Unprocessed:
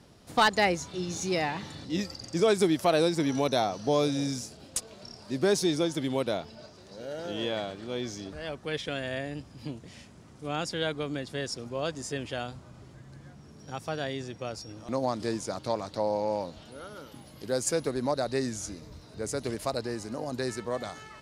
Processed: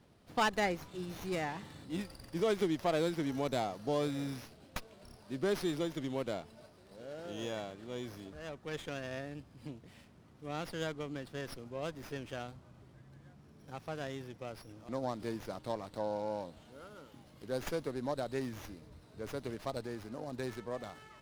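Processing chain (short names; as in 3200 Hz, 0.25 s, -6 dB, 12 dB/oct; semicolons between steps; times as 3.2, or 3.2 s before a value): running maximum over 5 samples; gain -8 dB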